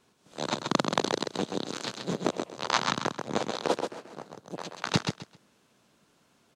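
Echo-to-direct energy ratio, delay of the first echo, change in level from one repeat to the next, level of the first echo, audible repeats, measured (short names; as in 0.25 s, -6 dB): -5.5 dB, 0.131 s, -13.0 dB, -5.5 dB, 3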